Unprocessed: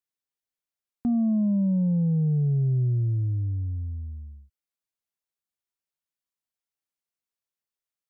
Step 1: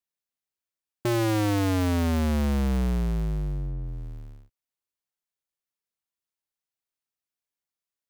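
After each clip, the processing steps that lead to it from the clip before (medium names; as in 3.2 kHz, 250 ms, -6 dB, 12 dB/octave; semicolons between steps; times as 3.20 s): cycle switcher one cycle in 2, inverted; trim -1 dB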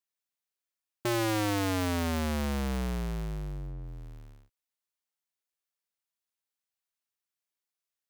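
bass shelf 430 Hz -8 dB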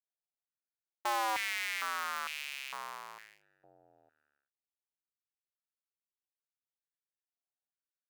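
local Wiener filter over 41 samples; step-sequenced high-pass 2.2 Hz 740–2500 Hz; trim -4 dB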